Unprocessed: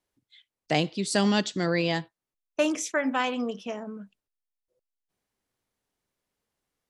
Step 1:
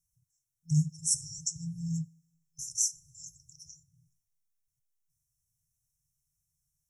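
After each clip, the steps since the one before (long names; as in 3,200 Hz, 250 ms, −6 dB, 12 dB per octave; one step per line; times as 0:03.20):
brick-wall band-stop 170–5,300 Hz
coupled-rooms reverb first 0.3 s, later 1.7 s, from −22 dB, DRR 14.5 dB
level +6 dB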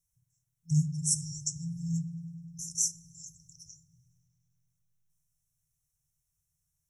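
notch filter 4,700 Hz, Q 5.8
delay with a low-pass on its return 101 ms, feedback 79%, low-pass 1,700 Hz, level −9 dB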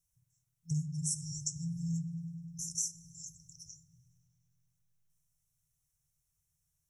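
downward compressor 4 to 1, threshold −32 dBFS, peak gain reduction 9.5 dB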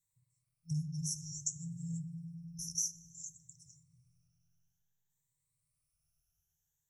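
rippled gain that drifts along the octave scale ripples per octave 1, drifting +0.57 Hz, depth 15 dB
level −5 dB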